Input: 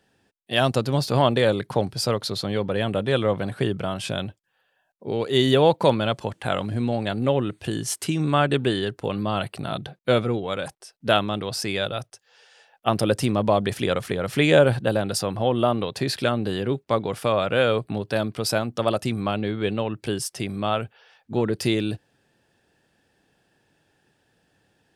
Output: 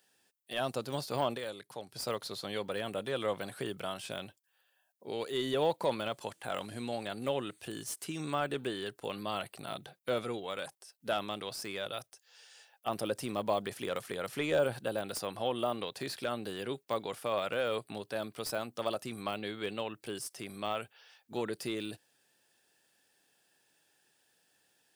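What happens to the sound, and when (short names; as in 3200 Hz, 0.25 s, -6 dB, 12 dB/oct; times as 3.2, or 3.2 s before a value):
1.34–1.96 dip -10 dB, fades 0.30 s exponential
whole clip: RIAA curve recording; de-esser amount 85%; gain -8 dB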